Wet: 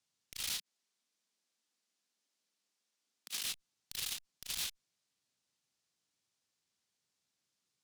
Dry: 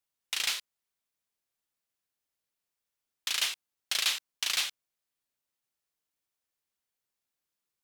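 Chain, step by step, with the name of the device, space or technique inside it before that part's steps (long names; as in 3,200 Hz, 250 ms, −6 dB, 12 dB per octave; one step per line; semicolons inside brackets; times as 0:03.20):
valve radio (band-pass filter 130–4,800 Hz; tube saturation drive 44 dB, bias 0.3; saturating transformer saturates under 730 Hz)
0:00.58–0:03.44: Butterworth high-pass 190 Hz
bass and treble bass +10 dB, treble +14 dB
level +2 dB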